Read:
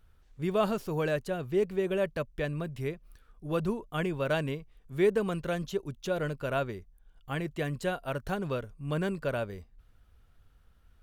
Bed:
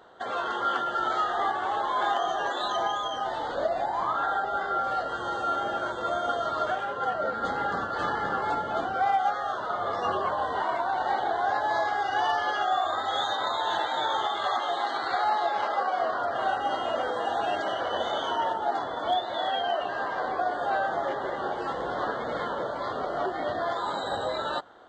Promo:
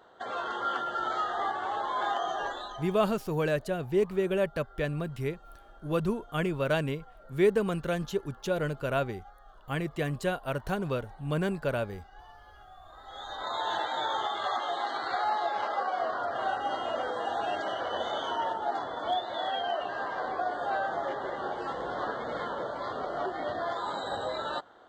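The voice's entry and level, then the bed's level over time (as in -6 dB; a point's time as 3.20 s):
2.40 s, +1.5 dB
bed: 2.45 s -4 dB
3.14 s -27 dB
12.79 s -27 dB
13.57 s -3.5 dB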